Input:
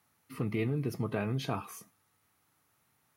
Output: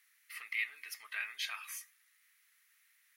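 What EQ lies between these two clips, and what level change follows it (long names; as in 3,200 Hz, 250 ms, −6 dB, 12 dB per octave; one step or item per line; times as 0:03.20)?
high-pass with resonance 1,900 Hz, resonance Q 3.8
low-pass filter 2,800 Hz 6 dB per octave
first difference
+11.5 dB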